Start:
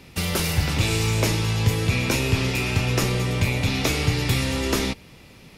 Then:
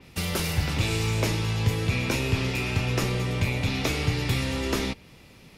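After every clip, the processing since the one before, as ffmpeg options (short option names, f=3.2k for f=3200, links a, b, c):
-af "adynamicequalizer=threshold=0.01:dfrequency=5000:dqfactor=0.7:tfrequency=5000:tqfactor=0.7:attack=5:release=100:ratio=0.375:range=2:mode=cutabove:tftype=highshelf,volume=-3.5dB"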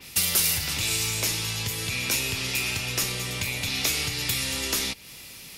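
-af "acompressor=threshold=-35dB:ratio=2,crystalizer=i=9.5:c=0,volume=-2.5dB"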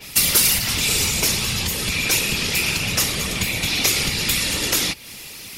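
-af "acontrast=30,afftfilt=real='hypot(re,im)*cos(2*PI*random(0))':imag='hypot(re,im)*sin(2*PI*random(1))':win_size=512:overlap=0.75,volume=7.5dB"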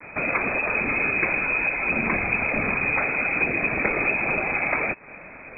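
-af "acrusher=bits=5:mix=0:aa=0.5,lowpass=f=2.2k:t=q:w=0.5098,lowpass=f=2.2k:t=q:w=0.6013,lowpass=f=2.2k:t=q:w=0.9,lowpass=f=2.2k:t=q:w=2.563,afreqshift=-2600,volume=3.5dB"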